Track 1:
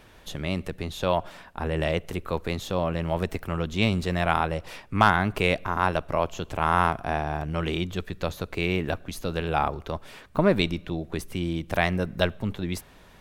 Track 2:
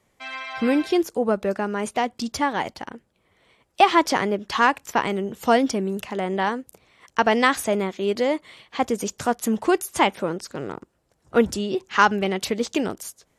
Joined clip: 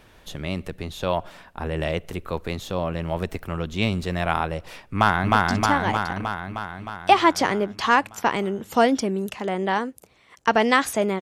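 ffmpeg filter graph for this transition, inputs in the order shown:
-filter_complex "[0:a]apad=whole_dur=11.21,atrim=end=11.21,atrim=end=5.342[s0];[1:a]atrim=start=2.048:end=7.92[s1];[s0][s1]acrossfade=d=0.004:c1=hsin:c2=hsin,asplit=2[s2][s3];[s3]afade=t=in:st=4.77:d=0.01,afade=t=out:st=5.34:d=0.01,aecho=0:1:310|620|930|1240|1550|1860|2170|2480|2790|3100|3410|3720:0.944061|0.660843|0.46259|0.323813|0.226669|0.158668|0.111068|0.0777475|0.0544232|0.0380963|0.0266674|0.0186672[s4];[s2][s4]amix=inputs=2:normalize=0"

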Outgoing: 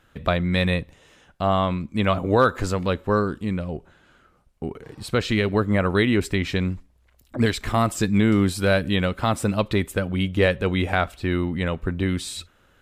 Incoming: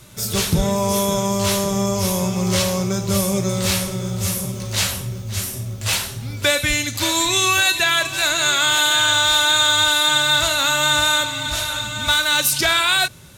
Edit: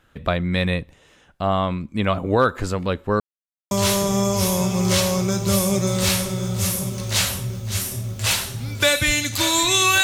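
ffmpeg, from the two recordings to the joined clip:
-filter_complex "[0:a]apad=whole_dur=10.03,atrim=end=10.03,asplit=2[s0][s1];[s0]atrim=end=3.2,asetpts=PTS-STARTPTS,afade=t=out:st=3.196:d=0.004:c=hsin[s2];[s1]atrim=start=3.2:end=3.71,asetpts=PTS-STARTPTS,volume=0[s3];[1:a]atrim=start=1.33:end=7.65,asetpts=PTS-STARTPTS,afade=t=in:d=0.004:c=hsin[s4];[s2][s3][s4]concat=n=3:v=0:a=1"

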